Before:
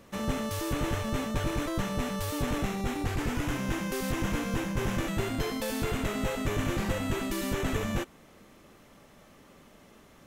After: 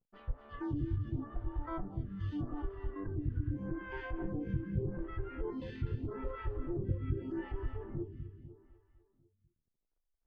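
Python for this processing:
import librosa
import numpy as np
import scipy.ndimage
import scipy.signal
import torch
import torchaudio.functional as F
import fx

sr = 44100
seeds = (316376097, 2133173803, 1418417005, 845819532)

y = fx.lower_of_two(x, sr, delay_ms=0.63)
y = fx.env_lowpass(y, sr, base_hz=650.0, full_db=-26.5)
y = fx.backlash(y, sr, play_db=-45.5)
y = fx.env_lowpass_down(y, sr, base_hz=670.0, full_db=-26.0)
y = fx.high_shelf(y, sr, hz=5800.0, db=6.0)
y = fx.noise_reduce_blind(y, sr, reduce_db=16)
y = fx.spacing_loss(y, sr, db_at_10k=22)
y = fx.echo_feedback(y, sr, ms=249, feedback_pct=53, wet_db=-11.0)
y = fx.stagger_phaser(y, sr, hz=0.82)
y = F.gain(torch.from_numpy(y), 1.5).numpy()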